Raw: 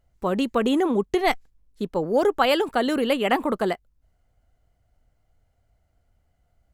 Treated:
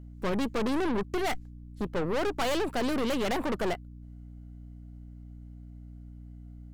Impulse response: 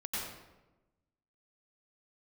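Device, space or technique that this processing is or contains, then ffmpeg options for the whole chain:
valve amplifier with mains hum: -af "aeval=exprs='(tanh(35.5*val(0)+0.7)-tanh(0.7))/35.5':c=same,aeval=exprs='val(0)+0.00398*(sin(2*PI*60*n/s)+sin(2*PI*2*60*n/s)/2+sin(2*PI*3*60*n/s)/3+sin(2*PI*4*60*n/s)/4+sin(2*PI*5*60*n/s)/5)':c=same,volume=1.58"

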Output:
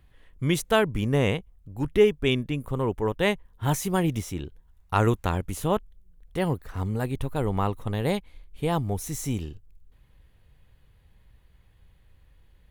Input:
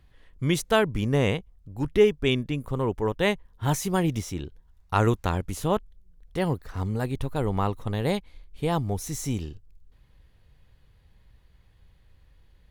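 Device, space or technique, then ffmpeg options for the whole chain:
exciter from parts: -filter_complex "[0:a]asplit=2[s0][s1];[s1]highpass=4900,asoftclip=type=tanh:threshold=0.0168,highpass=f=2600:w=0.5412,highpass=f=2600:w=1.3066,volume=0.562[s2];[s0][s2]amix=inputs=2:normalize=0"

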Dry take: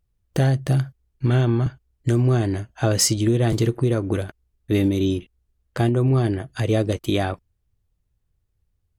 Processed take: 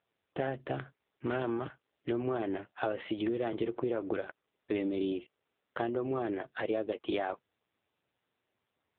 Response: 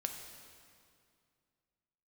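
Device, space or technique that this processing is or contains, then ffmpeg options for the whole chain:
voicemail: -af "highpass=420,lowpass=3100,acompressor=threshold=0.0398:ratio=6" -ar 8000 -c:a libopencore_amrnb -b:a 6700

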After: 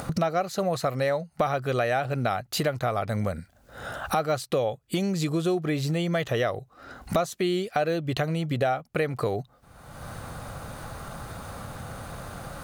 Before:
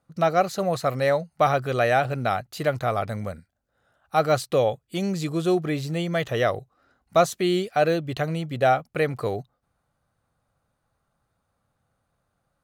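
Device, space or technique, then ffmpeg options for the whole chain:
upward and downward compression: -af "acompressor=mode=upward:threshold=0.0562:ratio=2.5,acompressor=threshold=0.02:ratio=4,volume=2.82"

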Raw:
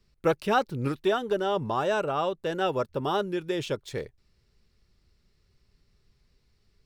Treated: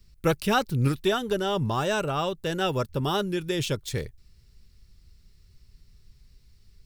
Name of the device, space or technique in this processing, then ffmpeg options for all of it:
smiley-face EQ: -af "lowshelf=f=150:g=8,equalizer=f=620:t=o:w=2.9:g=-7.5,highshelf=f=7300:g=9,volume=1.88"

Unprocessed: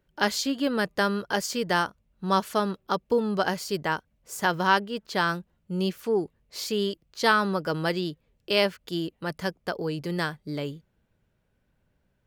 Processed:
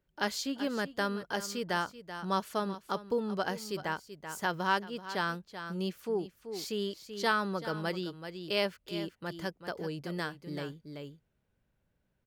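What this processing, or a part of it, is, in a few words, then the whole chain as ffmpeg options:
ducked delay: -filter_complex "[0:a]asplit=3[s0][s1][s2];[s1]adelay=383,volume=0.631[s3];[s2]apad=whole_len=557761[s4];[s3][s4]sidechaincompress=threshold=0.0251:ratio=6:attack=20:release=708[s5];[s0][s5]amix=inputs=2:normalize=0,volume=0.422"

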